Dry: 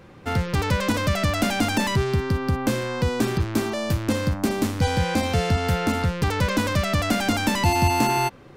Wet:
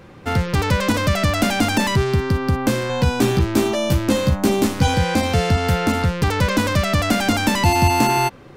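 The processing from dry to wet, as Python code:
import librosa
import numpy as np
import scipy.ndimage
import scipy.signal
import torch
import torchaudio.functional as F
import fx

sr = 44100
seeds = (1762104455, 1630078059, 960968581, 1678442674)

y = fx.doubler(x, sr, ms=15.0, db=-3, at=(2.88, 4.94))
y = F.gain(torch.from_numpy(y), 4.0).numpy()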